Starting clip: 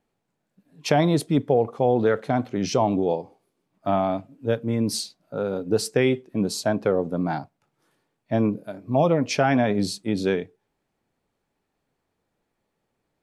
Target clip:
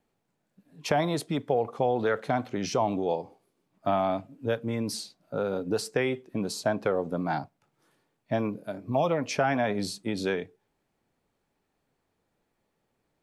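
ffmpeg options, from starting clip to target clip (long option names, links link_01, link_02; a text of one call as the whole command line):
ffmpeg -i in.wav -filter_complex "[0:a]acrossover=split=610|1900|7300[link_01][link_02][link_03][link_04];[link_01]acompressor=threshold=-29dB:ratio=4[link_05];[link_02]acompressor=threshold=-24dB:ratio=4[link_06];[link_03]acompressor=threshold=-38dB:ratio=4[link_07];[link_04]acompressor=threshold=-43dB:ratio=4[link_08];[link_05][link_06][link_07][link_08]amix=inputs=4:normalize=0" out.wav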